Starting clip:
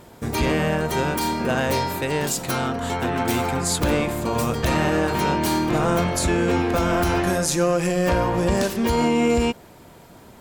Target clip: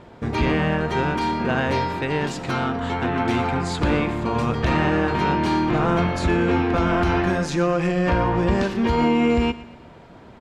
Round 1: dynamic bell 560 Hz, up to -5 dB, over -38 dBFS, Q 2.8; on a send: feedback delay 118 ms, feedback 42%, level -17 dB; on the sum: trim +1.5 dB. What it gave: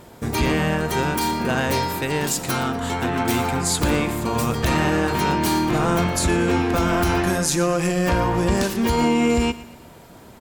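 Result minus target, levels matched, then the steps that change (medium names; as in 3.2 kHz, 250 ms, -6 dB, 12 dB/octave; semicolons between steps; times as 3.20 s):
4 kHz band +4.0 dB
add after dynamic bell: low-pass 3.2 kHz 12 dB/octave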